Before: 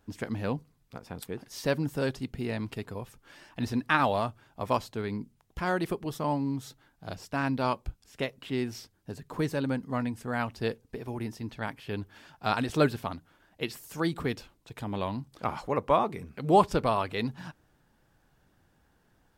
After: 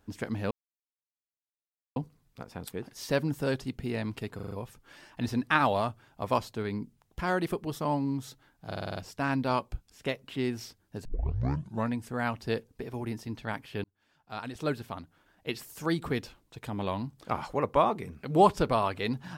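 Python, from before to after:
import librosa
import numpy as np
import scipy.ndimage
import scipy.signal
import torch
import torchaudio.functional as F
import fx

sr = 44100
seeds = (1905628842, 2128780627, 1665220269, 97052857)

y = fx.edit(x, sr, fx.insert_silence(at_s=0.51, length_s=1.45),
    fx.stutter(start_s=2.9, slice_s=0.04, count=5),
    fx.stutter(start_s=7.08, slice_s=0.05, count=6),
    fx.tape_start(start_s=9.19, length_s=0.85),
    fx.fade_in_span(start_s=11.98, length_s=1.87), tone=tone)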